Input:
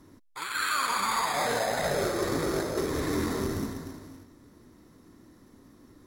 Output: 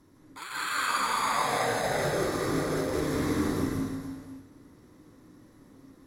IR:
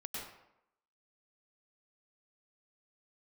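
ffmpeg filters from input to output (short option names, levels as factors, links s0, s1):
-filter_complex "[1:a]atrim=start_sample=2205,afade=t=out:st=0.2:d=0.01,atrim=end_sample=9261,asetrate=28224,aresample=44100[s0];[0:a][s0]afir=irnorm=-1:irlink=0,volume=0.841"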